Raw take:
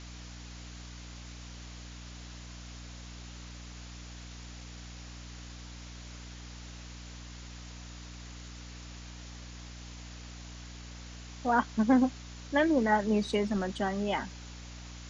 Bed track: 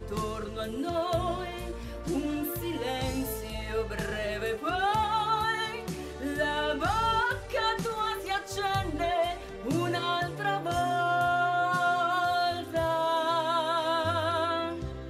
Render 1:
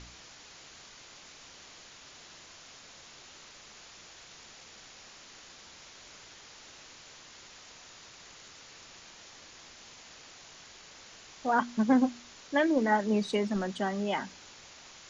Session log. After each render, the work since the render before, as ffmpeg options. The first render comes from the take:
-af "bandreject=f=60:t=h:w=4,bandreject=f=120:t=h:w=4,bandreject=f=180:t=h:w=4,bandreject=f=240:t=h:w=4,bandreject=f=300:t=h:w=4"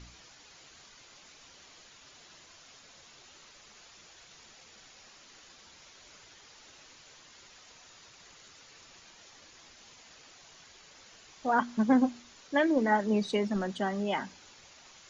-af "afftdn=nr=6:nf=-52"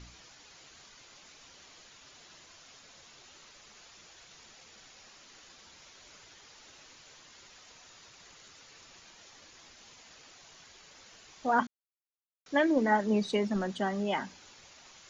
-filter_complex "[0:a]asplit=3[a][b][c];[a]atrim=end=11.67,asetpts=PTS-STARTPTS,afade=t=out:st=11.666:d=0.004:c=hsin[d];[b]atrim=start=11.67:end=12.46,asetpts=PTS-STARTPTS,volume=0[e];[c]atrim=start=12.46,asetpts=PTS-STARTPTS,afade=t=in:d=0.004:c=hsin[f];[d][e][f]concat=n=3:v=0:a=1"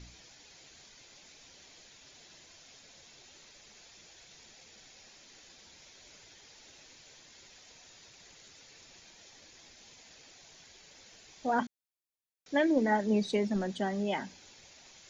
-af "equalizer=f=1.2k:t=o:w=0.7:g=-8.5,bandreject=f=2.9k:w=21"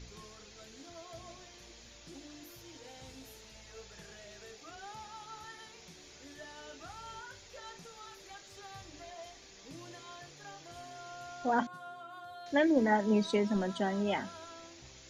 -filter_complex "[1:a]volume=-21dB[a];[0:a][a]amix=inputs=2:normalize=0"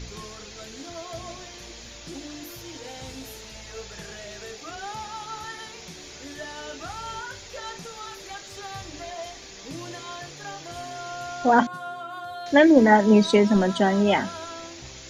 -af "volume=12dB"

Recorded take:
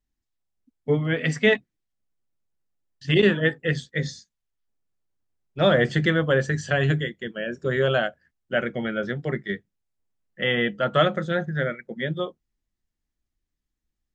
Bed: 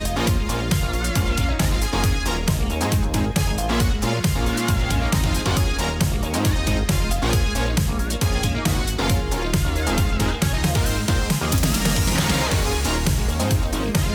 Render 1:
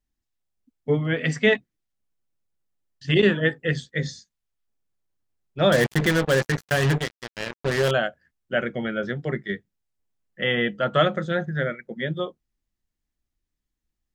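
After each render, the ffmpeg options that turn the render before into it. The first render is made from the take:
-filter_complex "[0:a]asettb=1/sr,asplit=3[a][b][c];[a]atrim=end=5.724[d];[b]atrim=start=5.72:end=7.91,asetpts=PTS-STARTPTS,afade=t=in:d=0.004:c=qsin,afade=t=out:st=2.186:d=0.004:c=qsin,acrusher=bits=3:mix=0:aa=0.5[e];[c]atrim=start=7.906[f];[d][e]acrossfade=d=0.004:c1=hsin:c2=qsin[g];[g][f]acrossfade=d=0.004:c1=qsin:c2=hsin"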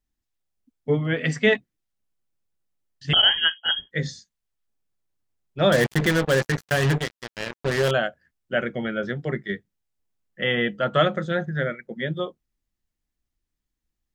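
-filter_complex "[0:a]asettb=1/sr,asplit=3[a][b][c];[a]atrim=end=3.134[d];[b]atrim=start=3.13:end=3.91,asetpts=PTS-STARTPTS,afade=t=in:d=0.004:c=qsin,afade=t=out:st=0.776:d=0.004:c=qsin,lowpass=f=2.9k:t=q:w=0.5098,lowpass=f=2.9k:t=q:w=0.6013,lowpass=f=2.9k:t=q:w=0.9,lowpass=f=2.9k:t=q:w=2.563,afreqshift=-3400[e];[c]atrim=start=3.906[f];[d][e]acrossfade=d=0.004:c1=hsin:c2=qsin[g];[g][f]acrossfade=d=0.004:c1=qsin:c2=hsin"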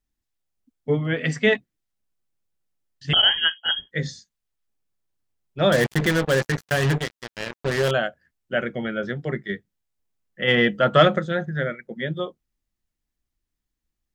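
-filter_complex "[0:a]asplit=3[a][b][c];[a]afade=t=out:st=10.47:d=0.02[d];[b]acontrast=29,afade=t=in:st=10.47:d=0.02,afade=t=out:st=11.18:d=0.02[e];[c]afade=t=in:st=11.18:d=0.02[f];[d][e][f]amix=inputs=3:normalize=0"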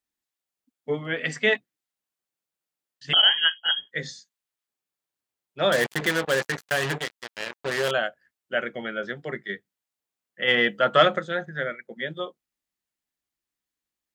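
-af "highpass=f=560:p=1,equalizer=f=5.6k:w=3.9:g=-2"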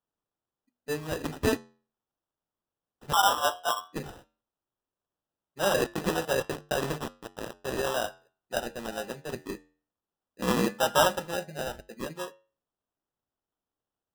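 -af "acrusher=samples=20:mix=1:aa=0.000001,flanger=delay=10:depth=1.9:regen=-83:speed=0.16:shape=sinusoidal"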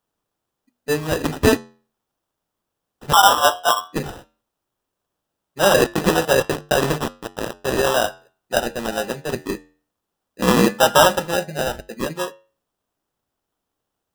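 -af "volume=11dB,alimiter=limit=-3dB:level=0:latency=1"

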